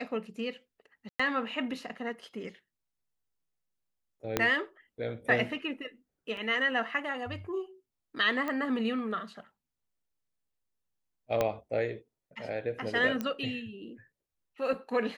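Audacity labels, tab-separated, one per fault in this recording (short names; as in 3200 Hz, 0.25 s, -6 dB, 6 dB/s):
1.090000	1.200000	gap 0.105 s
4.370000	4.370000	pop -11 dBFS
6.370000	6.370000	gap 2.3 ms
8.480000	8.480000	pop -21 dBFS
11.410000	11.410000	pop -14 dBFS
13.210000	13.210000	pop -19 dBFS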